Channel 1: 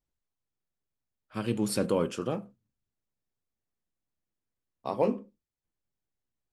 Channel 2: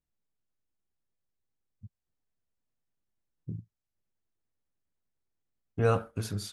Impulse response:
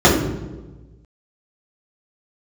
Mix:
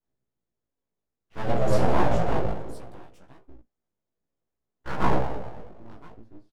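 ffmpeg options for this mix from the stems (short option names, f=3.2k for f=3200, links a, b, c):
-filter_complex "[0:a]equalizer=f=89:w=0.64:g=-3,volume=-10.5dB,asplit=4[a][b][c][d];[b]volume=-10.5dB[e];[c]volume=-5.5dB[f];[1:a]bandpass=f=170:t=q:w=1.7:csg=0,volume=-2dB[g];[d]apad=whole_len=287686[h];[g][h]sidechaincompress=threshold=-48dB:ratio=4:attack=9.6:release=1160[i];[2:a]atrim=start_sample=2205[j];[e][j]afir=irnorm=-1:irlink=0[k];[f]aecho=0:1:1024:1[l];[a][i][k][l]amix=inputs=4:normalize=0,aeval=exprs='abs(val(0))':c=same,flanger=delay=15.5:depth=3:speed=0.6"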